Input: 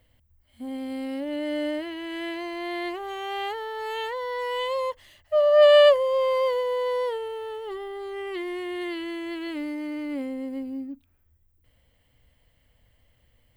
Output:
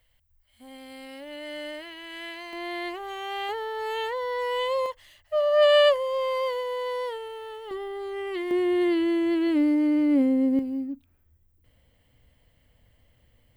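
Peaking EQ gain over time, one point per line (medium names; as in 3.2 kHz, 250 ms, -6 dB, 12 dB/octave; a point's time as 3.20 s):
peaking EQ 210 Hz 3 oct
-15 dB
from 2.53 s -4 dB
from 3.49 s +2.5 dB
from 4.86 s -7.5 dB
from 7.71 s +1.5 dB
from 8.51 s +11.5 dB
from 10.59 s +3.5 dB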